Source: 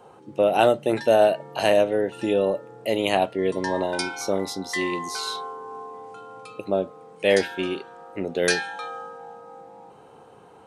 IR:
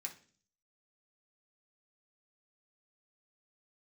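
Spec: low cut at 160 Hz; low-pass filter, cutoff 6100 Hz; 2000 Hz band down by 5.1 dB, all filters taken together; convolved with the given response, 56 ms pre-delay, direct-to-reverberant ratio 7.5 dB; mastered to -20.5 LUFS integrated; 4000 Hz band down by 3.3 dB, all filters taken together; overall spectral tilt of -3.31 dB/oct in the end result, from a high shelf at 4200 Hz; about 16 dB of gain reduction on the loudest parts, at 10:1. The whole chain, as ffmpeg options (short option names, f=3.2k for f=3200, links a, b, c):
-filter_complex "[0:a]highpass=160,lowpass=6.1k,equalizer=f=2k:t=o:g=-7,equalizer=f=4k:t=o:g=-6,highshelf=f=4.2k:g=8.5,acompressor=threshold=-30dB:ratio=10,asplit=2[a][b];[1:a]atrim=start_sample=2205,adelay=56[c];[b][c]afir=irnorm=-1:irlink=0,volume=-5dB[d];[a][d]amix=inputs=2:normalize=0,volume=15dB"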